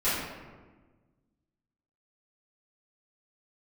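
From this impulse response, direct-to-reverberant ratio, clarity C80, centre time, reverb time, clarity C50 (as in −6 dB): −15.0 dB, 2.0 dB, 86 ms, 1.4 s, −1.0 dB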